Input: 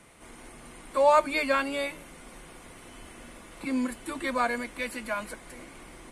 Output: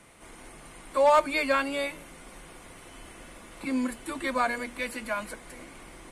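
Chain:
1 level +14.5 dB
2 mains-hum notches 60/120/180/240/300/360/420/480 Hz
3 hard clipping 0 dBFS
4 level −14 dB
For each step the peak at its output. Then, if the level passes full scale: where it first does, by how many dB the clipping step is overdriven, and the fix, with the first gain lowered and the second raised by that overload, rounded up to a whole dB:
+4.0, +4.0, 0.0, −14.0 dBFS
step 1, 4.0 dB
step 1 +10.5 dB, step 4 −10 dB

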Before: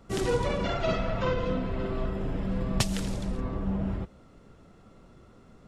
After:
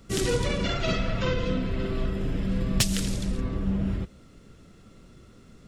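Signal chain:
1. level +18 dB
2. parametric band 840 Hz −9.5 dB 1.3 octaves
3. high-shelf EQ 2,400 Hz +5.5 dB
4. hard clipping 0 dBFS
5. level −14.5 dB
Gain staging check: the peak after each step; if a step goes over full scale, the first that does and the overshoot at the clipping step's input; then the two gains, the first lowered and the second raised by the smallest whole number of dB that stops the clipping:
+7.5, +7.0, +9.0, 0.0, −14.5 dBFS
step 1, 9.0 dB
step 1 +9 dB, step 5 −5.5 dB

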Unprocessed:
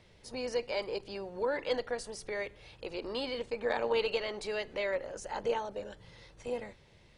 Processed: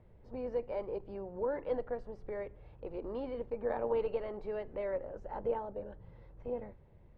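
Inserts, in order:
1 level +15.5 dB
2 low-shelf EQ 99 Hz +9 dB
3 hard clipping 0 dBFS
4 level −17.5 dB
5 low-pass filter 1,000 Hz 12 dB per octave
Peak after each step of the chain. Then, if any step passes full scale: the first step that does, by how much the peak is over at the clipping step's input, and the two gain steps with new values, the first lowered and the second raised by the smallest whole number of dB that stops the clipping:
−2.5, −2.5, −2.5, −20.0, −20.5 dBFS
no step passes full scale

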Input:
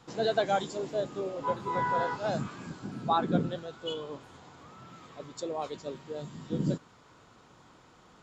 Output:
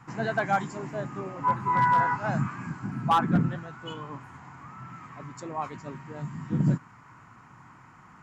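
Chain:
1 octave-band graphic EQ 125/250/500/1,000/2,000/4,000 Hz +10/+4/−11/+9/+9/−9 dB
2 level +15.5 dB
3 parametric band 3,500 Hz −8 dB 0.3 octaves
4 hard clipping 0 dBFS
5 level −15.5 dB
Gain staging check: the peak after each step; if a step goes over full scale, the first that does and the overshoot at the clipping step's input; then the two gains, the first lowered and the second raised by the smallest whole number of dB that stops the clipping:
−8.5, +7.0, +7.0, 0.0, −15.5 dBFS
step 2, 7.0 dB
step 2 +8.5 dB, step 5 −8.5 dB

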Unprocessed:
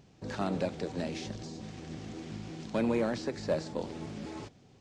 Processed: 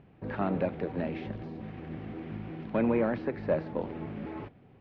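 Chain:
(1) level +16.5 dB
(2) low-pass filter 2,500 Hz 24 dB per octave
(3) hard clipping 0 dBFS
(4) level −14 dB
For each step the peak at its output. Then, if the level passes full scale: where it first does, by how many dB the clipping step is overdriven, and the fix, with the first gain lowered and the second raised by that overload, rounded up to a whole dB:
−3.0, −3.0, −3.0, −17.0 dBFS
no step passes full scale

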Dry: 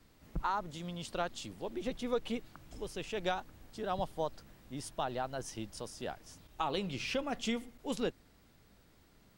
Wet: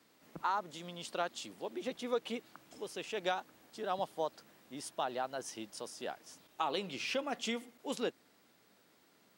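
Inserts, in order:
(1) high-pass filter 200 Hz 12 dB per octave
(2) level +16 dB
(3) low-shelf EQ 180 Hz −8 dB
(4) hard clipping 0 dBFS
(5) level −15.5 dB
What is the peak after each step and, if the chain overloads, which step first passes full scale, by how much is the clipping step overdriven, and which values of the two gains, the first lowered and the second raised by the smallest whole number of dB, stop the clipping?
−19.5, −3.5, −3.5, −3.5, −19.0 dBFS
no step passes full scale

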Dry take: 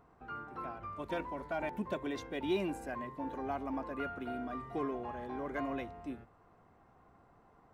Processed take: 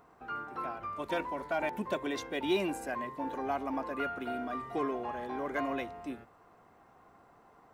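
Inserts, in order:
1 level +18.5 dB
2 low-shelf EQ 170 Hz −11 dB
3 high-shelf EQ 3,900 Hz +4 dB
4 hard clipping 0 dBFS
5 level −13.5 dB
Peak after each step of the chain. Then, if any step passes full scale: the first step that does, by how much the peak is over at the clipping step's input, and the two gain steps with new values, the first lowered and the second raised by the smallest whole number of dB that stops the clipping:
−4.0, −5.0, −4.5, −4.5, −18.0 dBFS
no step passes full scale

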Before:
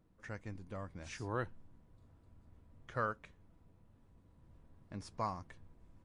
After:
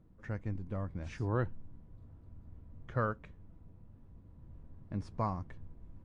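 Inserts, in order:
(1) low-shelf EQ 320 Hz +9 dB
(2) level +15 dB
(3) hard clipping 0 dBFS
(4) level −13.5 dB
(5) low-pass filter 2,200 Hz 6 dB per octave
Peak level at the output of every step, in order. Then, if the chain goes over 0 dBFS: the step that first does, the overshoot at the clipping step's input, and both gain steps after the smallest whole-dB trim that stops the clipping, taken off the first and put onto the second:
−20.0, −5.0, −5.0, −18.5, −19.0 dBFS
no step passes full scale

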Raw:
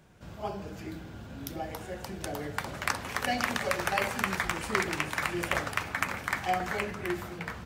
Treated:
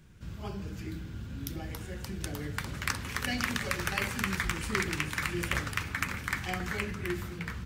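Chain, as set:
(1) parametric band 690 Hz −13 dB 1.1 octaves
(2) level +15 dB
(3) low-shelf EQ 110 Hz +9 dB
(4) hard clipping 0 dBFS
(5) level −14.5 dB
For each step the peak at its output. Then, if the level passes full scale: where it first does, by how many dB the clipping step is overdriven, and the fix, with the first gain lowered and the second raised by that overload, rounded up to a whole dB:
−9.5, +5.5, +5.5, 0.0, −14.5 dBFS
step 2, 5.5 dB
step 2 +9 dB, step 5 −8.5 dB

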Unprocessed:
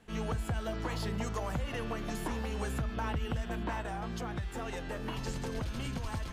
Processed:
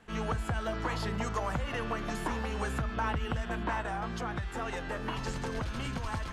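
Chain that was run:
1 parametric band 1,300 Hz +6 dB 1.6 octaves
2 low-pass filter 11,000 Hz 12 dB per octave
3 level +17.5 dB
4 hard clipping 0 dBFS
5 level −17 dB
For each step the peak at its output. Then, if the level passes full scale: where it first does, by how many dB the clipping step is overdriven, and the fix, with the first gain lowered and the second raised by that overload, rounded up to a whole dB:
−21.0, −21.0, −3.5, −3.5, −20.5 dBFS
no step passes full scale

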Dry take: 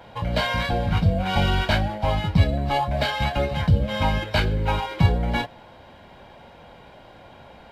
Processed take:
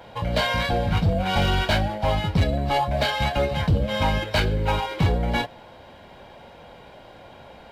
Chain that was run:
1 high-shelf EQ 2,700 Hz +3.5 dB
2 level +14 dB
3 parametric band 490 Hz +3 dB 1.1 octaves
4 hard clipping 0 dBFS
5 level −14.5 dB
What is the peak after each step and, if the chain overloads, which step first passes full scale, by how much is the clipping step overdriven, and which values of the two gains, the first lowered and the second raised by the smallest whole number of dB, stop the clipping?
−5.0, +9.0, +9.0, 0.0, −14.5 dBFS
step 2, 9.0 dB
step 2 +5 dB, step 5 −5.5 dB

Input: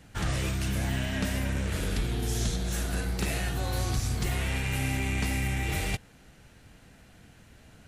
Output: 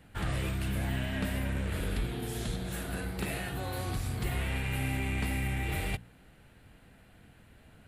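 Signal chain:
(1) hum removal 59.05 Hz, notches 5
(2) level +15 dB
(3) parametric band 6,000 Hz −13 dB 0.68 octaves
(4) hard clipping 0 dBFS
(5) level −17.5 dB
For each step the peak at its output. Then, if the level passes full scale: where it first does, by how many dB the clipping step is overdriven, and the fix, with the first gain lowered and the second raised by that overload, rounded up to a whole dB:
−18.0, −3.0, −3.0, −3.0, −20.5 dBFS
no step passes full scale

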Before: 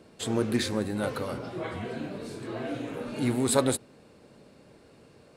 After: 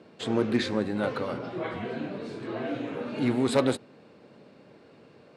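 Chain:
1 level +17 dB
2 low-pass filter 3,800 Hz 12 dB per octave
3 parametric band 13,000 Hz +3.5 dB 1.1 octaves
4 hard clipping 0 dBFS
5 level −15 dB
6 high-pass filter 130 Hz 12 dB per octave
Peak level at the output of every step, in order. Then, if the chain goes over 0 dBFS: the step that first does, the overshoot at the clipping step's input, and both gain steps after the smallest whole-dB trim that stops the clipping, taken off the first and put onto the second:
+9.0, +8.5, +8.5, 0.0, −15.0, −10.0 dBFS
step 1, 8.5 dB
step 1 +8 dB, step 5 −6 dB

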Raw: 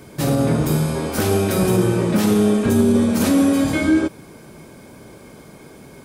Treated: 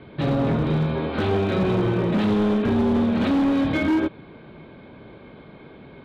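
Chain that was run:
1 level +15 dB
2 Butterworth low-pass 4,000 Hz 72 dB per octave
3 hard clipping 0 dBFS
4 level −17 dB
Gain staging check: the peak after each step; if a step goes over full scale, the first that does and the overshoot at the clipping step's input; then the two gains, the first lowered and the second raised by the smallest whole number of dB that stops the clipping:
+8.5, +8.5, 0.0, −17.0 dBFS
step 1, 8.5 dB
step 1 +6 dB, step 4 −8 dB

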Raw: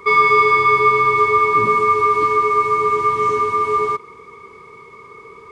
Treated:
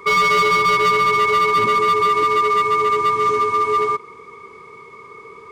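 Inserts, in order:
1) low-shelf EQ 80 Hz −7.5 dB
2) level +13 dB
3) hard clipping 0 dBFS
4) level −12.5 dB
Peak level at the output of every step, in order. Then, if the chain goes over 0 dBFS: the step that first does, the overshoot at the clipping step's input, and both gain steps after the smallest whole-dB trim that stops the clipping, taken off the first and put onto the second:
−3.5, +9.5, 0.0, −12.5 dBFS
step 2, 9.5 dB
step 2 +3 dB, step 4 −2.5 dB

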